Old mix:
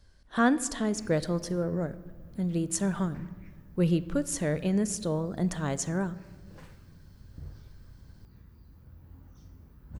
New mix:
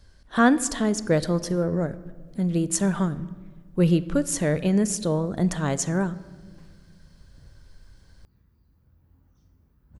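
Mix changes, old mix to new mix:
speech +5.5 dB; background -9.0 dB

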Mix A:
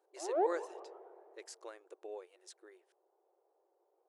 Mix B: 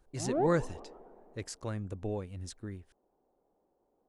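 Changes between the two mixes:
speech +7.5 dB; master: remove brick-wall FIR high-pass 330 Hz

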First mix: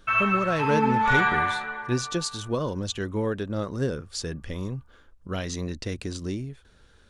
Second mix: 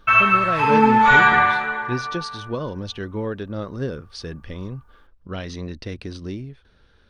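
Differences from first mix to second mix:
speech: add Savitzky-Golay filter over 15 samples; background +8.5 dB

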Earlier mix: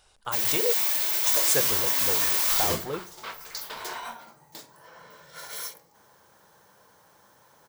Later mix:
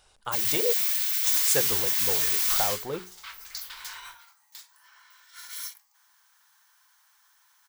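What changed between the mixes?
background: add Bessel high-pass 1.7 kHz, order 8; reverb: off

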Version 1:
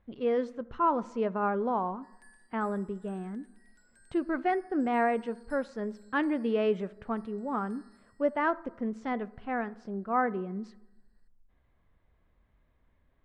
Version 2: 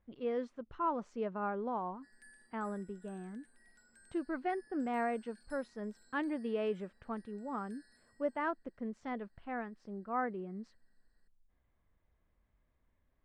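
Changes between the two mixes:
speech -4.0 dB; reverb: off

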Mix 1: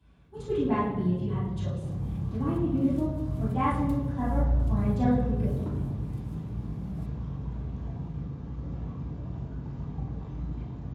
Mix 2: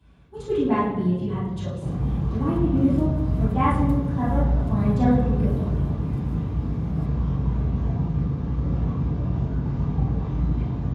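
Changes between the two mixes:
speech +5.0 dB; second sound: send +11.5 dB

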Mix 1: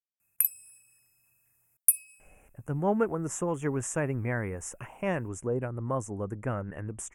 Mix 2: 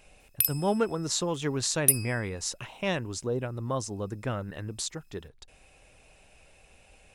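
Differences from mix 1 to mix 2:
speech: entry -2.20 s; master: remove Butterworth band-stop 4.2 kHz, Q 0.72

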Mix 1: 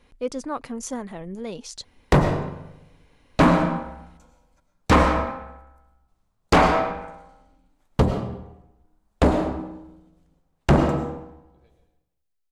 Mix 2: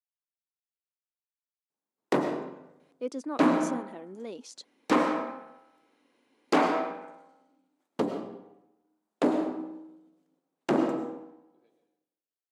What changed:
speech: entry +2.80 s; master: add ladder high-pass 240 Hz, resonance 45%

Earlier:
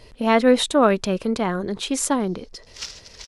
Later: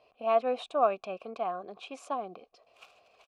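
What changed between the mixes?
background: remove resonant low-pass 5.4 kHz, resonance Q 4.2; master: add vowel filter a

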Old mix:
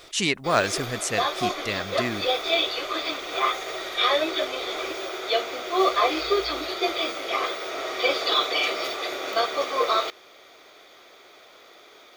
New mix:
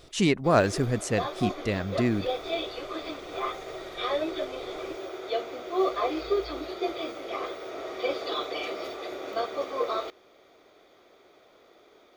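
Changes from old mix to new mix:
background -6.5 dB; master: add tilt shelf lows +7 dB, about 810 Hz

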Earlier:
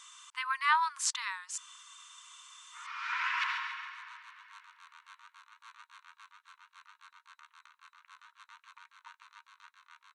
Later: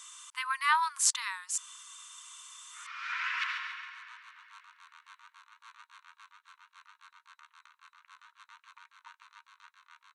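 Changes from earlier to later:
speech: remove distance through air 68 m; first sound: add high-pass 1.2 kHz 24 dB/octave

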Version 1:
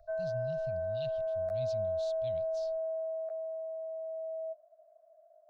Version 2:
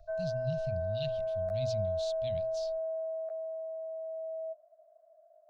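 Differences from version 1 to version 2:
speech +7.0 dB; master: add hum notches 60/120 Hz

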